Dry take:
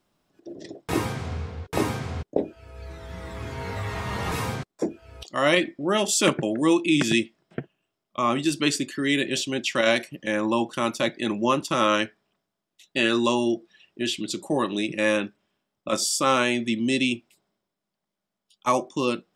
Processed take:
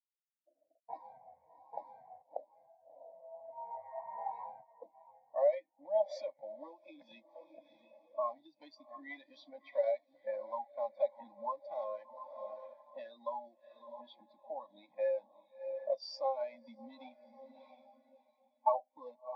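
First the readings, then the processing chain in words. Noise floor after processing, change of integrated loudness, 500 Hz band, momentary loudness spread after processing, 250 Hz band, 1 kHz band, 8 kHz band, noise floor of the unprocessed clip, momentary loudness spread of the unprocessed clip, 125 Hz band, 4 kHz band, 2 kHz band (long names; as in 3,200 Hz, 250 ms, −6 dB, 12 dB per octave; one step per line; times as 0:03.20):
−80 dBFS, −14.5 dB, −10.5 dB, 23 LU, −35.5 dB, −12.5 dB, below −40 dB, −84 dBFS, 16 LU, below −40 dB, −29.0 dB, −30.0 dB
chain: one scale factor per block 3 bits
parametric band 1,700 Hz −9 dB 0.56 octaves
low-pass that shuts in the quiet parts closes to 650 Hz, open at −19 dBFS
high-shelf EQ 4,100 Hz −12 dB
feedback delay with all-pass diffusion 654 ms, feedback 54%, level −10 dB
downward compressor 8 to 1, threshold −28 dBFS, peak gain reduction 13 dB
high-pass filter 460 Hz 12 dB per octave
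phaser with its sweep stopped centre 1,900 Hz, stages 8
every bin expanded away from the loudest bin 2.5 to 1
level +2.5 dB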